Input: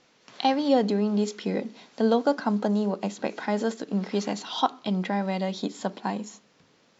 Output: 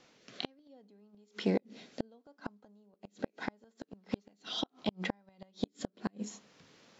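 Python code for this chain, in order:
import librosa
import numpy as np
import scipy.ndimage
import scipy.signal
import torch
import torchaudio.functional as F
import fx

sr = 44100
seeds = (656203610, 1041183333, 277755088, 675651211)

y = fx.rotary(x, sr, hz=0.7)
y = fx.gate_flip(y, sr, shuts_db=-20.0, range_db=-38)
y = fx.doppler_dist(y, sr, depth_ms=0.1)
y = y * librosa.db_to_amplitude(2.0)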